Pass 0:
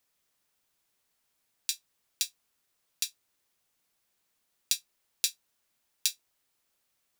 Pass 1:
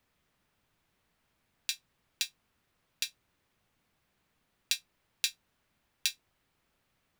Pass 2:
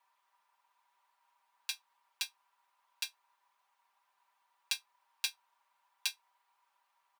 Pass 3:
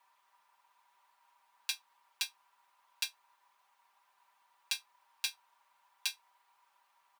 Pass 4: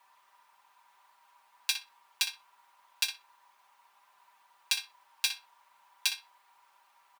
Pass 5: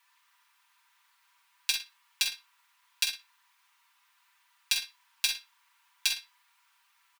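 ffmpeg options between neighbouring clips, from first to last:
ffmpeg -i in.wav -af "bass=frequency=250:gain=9,treble=frequency=4000:gain=-13,volume=6.5dB" out.wav
ffmpeg -i in.wav -af "highpass=frequency=940:width_type=q:width=8.7,aecho=1:1:5.1:0.89,volume=-7dB" out.wav
ffmpeg -i in.wav -af "alimiter=limit=-20.5dB:level=0:latency=1:release=93,volume=5dB" out.wav
ffmpeg -i in.wav -filter_complex "[0:a]asplit=2[link_01][link_02];[link_02]adelay=61,lowpass=frequency=3600:poles=1,volume=-7dB,asplit=2[link_03][link_04];[link_04]adelay=61,lowpass=frequency=3600:poles=1,volume=0.2,asplit=2[link_05][link_06];[link_06]adelay=61,lowpass=frequency=3600:poles=1,volume=0.2[link_07];[link_01][link_03][link_05][link_07]amix=inputs=4:normalize=0,volume=6dB" out.wav
ffmpeg -i in.wav -filter_complex "[0:a]acrossover=split=1300|3300[link_01][link_02][link_03];[link_01]acrusher=bits=6:dc=4:mix=0:aa=0.000001[link_04];[link_04][link_02][link_03]amix=inputs=3:normalize=0,asplit=2[link_05][link_06];[link_06]adelay=47,volume=-8dB[link_07];[link_05][link_07]amix=inputs=2:normalize=0,volume=1.5dB" out.wav

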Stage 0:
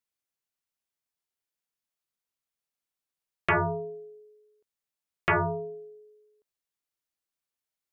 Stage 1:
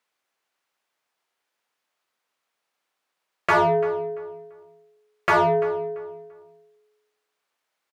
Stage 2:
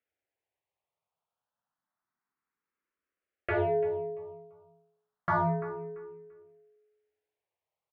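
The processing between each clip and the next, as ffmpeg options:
ffmpeg -i in.wav -filter_complex "[0:a]lowshelf=frequency=290:gain=-7.5,asplit=2[link_01][link_02];[link_02]highpass=frequency=720:poles=1,volume=22dB,asoftclip=type=tanh:threshold=-16dB[link_03];[link_01][link_03]amix=inputs=2:normalize=0,lowpass=frequency=1100:poles=1,volume=-6dB,asplit=2[link_04][link_05];[link_05]adelay=340,lowpass=frequency=2500:poles=1,volume=-15dB,asplit=2[link_06][link_07];[link_07]adelay=340,lowpass=frequency=2500:poles=1,volume=0.27,asplit=2[link_08][link_09];[link_09]adelay=340,lowpass=frequency=2500:poles=1,volume=0.27[link_10];[link_04][link_06][link_08][link_10]amix=inputs=4:normalize=0,volume=6.5dB" out.wav
ffmpeg -i in.wav -filter_complex "[0:a]lowpass=2100,equalizer=frequency=79:width_type=o:width=2.7:gain=13.5,asplit=2[link_01][link_02];[link_02]afreqshift=0.29[link_03];[link_01][link_03]amix=inputs=2:normalize=1,volume=-7.5dB" out.wav

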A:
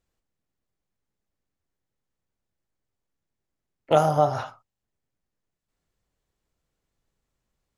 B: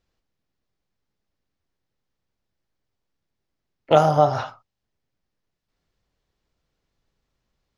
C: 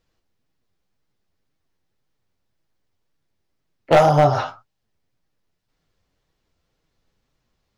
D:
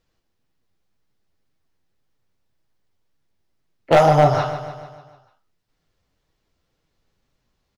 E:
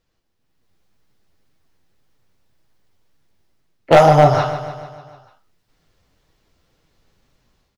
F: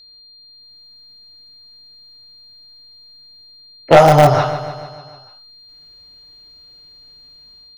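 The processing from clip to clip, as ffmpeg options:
ffmpeg -i in.wav -af "highshelf=frequency=6600:width_type=q:width=1.5:gain=-8,volume=3.5dB" out.wav
ffmpeg -i in.wav -af "flanger=delay=6.2:depth=5.7:regen=45:speed=1.9:shape=sinusoidal,asoftclip=type=hard:threshold=-15.5dB,volume=8dB" out.wav
ffmpeg -i in.wav -af "aecho=1:1:148|296|444|592|740|888:0.282|0.155|0.0853|0.0469|0.0258|0.0142" out.wav
ffmpeg -i in.wav -af "dynaudnorm=framelen=380:gausssize=3:maxgain=9dB" out.wav
ffmpeg -i in.wav -filter_complex "[0:a]asplit=2[link_01][link_02];[link_02]aeval=exprs='(mod(1.5*val(0)+1,2)-1)/1.5':channel_layout=same,volume=-12dB[link_03];[link_01][link_03]amix=inputs=2:normalize=0,aeval=exprs='val(0)+0.00794*sin(2*PI*4200*n/s)':channel_layout=same" out.wav

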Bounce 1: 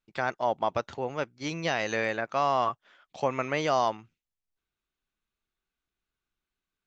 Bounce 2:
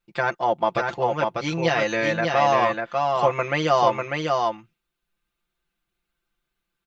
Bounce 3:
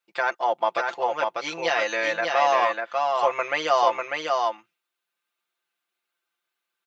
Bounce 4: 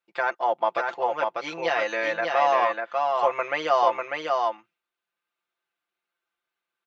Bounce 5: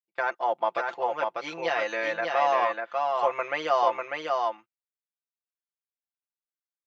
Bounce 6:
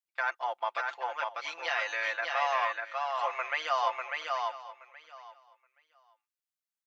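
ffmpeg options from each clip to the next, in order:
ffmpeg -i in.wav -af "equalizer=frequency=6300:width=1.5:gain=-4,aecho=1:1:5.8:0.92,aecho=1:1:596:0.668,volume=3.5dB" out.wav
ffmpeg -i in.wav -af "highpass=550" out.wav
ffmpeg -i in.wav -af "highshelf=frequency=4100:gain=-11.5" out.wav
ffmpeg -i in.wav -af "agate=range=-23dB:threshold=-41dB:ratio=16:detection=peak,volume=-2.5dB" out.wav
ffmpeg -i in.wav -af "highpass=1100,aecho=1:1:824|1648:0.141|0.0226" out.wav

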